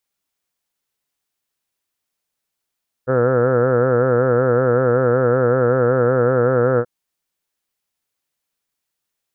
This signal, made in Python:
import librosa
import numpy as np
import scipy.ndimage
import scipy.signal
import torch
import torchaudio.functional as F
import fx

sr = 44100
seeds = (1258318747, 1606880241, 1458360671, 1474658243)

y = fx.vowel(sr, seeds[0], length_s=3.78, word='heard', hz=125.0, glide_st=0.0, vibrato_hz=5.3, vibrato_st=0.9)